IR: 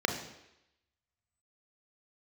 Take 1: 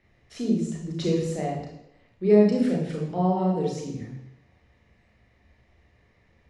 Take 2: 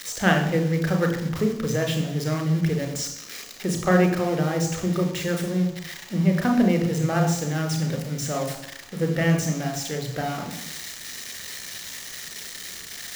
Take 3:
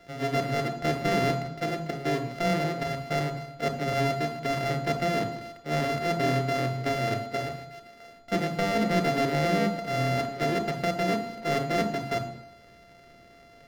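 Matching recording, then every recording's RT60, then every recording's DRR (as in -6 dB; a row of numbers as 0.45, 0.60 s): 2; 0.85, 0.85, 0.85 s; -1.5, 3.5, 7.5 dB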